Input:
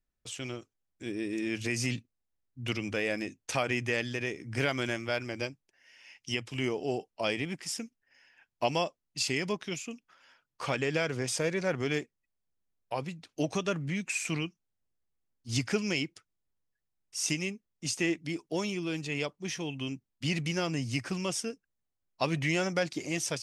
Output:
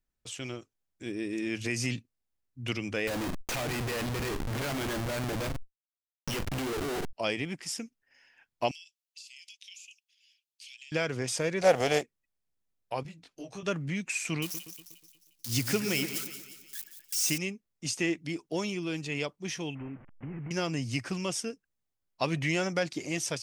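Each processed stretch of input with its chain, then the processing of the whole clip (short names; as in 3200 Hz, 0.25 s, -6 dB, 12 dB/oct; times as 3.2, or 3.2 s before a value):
3.07–7.13 Schmitt trigger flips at -41 dBFS + doubler 42 ms -12 dB + fast leveller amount 100%
8.71–10.92 steep high-pass 2500 Hz 48 dB/oct + compressor 20:1, threshold -44 dBFS
11.61–12.01 spectral contrast lowered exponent 0.62 + band shelf 610 Hz +12.5 dB 1 oct
13.03–13.63 compressor 2.5:1, threshold -39 dBFS + detuned doubles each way 16 cents
14.42–17.38 switching spikes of -26.5 dBFS + split-band echo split 2400 Hz, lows 0.121 s, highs 0.177 s, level -10 dB
19.75–20.51 delta modulation 16 kbps, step -46.5 dBFS + LPF 2200 Hz 24 dB/oct + compressor 10:1, threshold -35 dBFS
whole clip: dry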